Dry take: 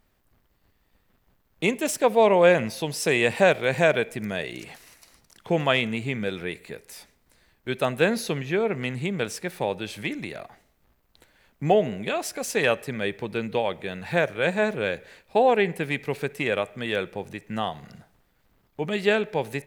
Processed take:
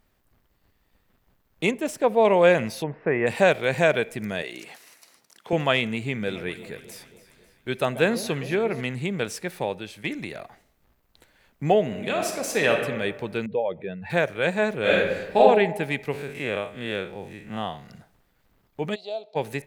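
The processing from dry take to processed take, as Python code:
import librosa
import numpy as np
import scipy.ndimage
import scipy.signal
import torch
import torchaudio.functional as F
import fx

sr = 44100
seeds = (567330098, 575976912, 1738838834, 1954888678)

y = fx.high_shelf(x, sr, hz=2100.0, db=-9.0, at=(1.71, 2.25))
y = fx.steep_lowpass(y, sr, hz=2000.0, slope=36, at=(2.82, 3.26), fade=0.02)
y = fx.bessel_highpass(y, sr, hz=300.0, order=2, at=(4.42, 5.53))
y = fx.echo_alternate(y, sr, ms=136, hz=880.0, feedback_pct=71, wet_db=-13.0, at=(6.27, 8.8), fade=0.02)
y = fx.reverb_throw(y, sr, start_s=11.85, length_s=0.95, rt60_s=1.3, drr_db=3.0)
y = fx.spec_expand(y, sr, power=1.8, at=(13.46, 14.1))
y = fx.reverb_throw(y, sr, start_s=14.81, length_s=0.57, rt60_s=1.0, drr_db=-8.0)
y = fx.spec_blur(y, sr, span_ms=103.0, at=(16.11, 17.86), fade=0.02)
y = fx.double_bandpass(y, sr, hz=1700.0, octaves=2.6, at=(18.94, 19.35), fade=0.02)
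y = fx.edit(y, sr, fx.fade_out_to(start_s=9.42, length_s=0.62, curve='qsin', floor_db=-9.5), tone=tone)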